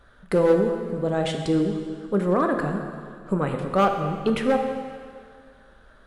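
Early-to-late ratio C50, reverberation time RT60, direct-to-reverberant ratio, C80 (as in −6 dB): 5.5 dB, 2.0 s, 4.0 dB, 6.5 dB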